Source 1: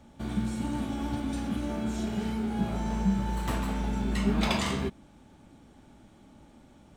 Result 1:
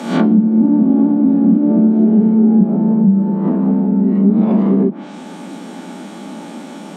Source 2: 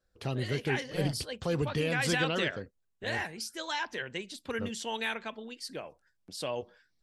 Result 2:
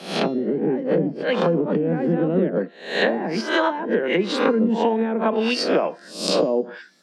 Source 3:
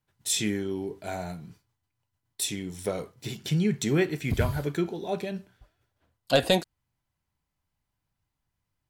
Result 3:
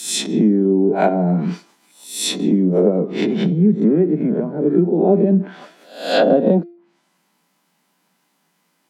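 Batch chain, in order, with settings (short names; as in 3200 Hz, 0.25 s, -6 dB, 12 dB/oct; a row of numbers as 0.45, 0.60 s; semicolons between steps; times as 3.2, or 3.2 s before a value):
spectral swells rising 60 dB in 0.52 s; vocal rider within 4 dB 2 s; treble ducked by the level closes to 360 Hz, closed at -26.5 dBFS; compressor 8:1, threshold -33 dBFS; steep high-pass 170 Hz 72 dB/oct; de-hum 345.3 Hz, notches 20; normalise peaks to -2 dBFS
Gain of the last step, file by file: +26.5, +19.0, +23.5 dB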